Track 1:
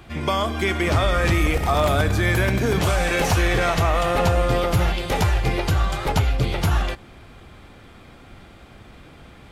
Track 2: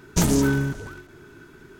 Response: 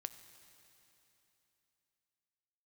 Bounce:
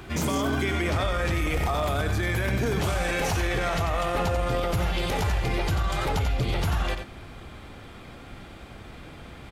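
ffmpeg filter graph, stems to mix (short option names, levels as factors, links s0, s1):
-filter_complex "[0:a]acompressor=threshold=0.1:ratio=6,volume=1.19,asplit=2[s0][s1];[s1]volume=0.335[s2];[1:a]volume=5.01,asoftclip=hard,volume=0.2,highpass=160,volume=0.891[s3];[s2]aecho=0:1:90:1[s4];[s0][s3][s4]amix=inputs=3:normalize=0,alimiter=limit=0.133:level=0:latency=1:release=30"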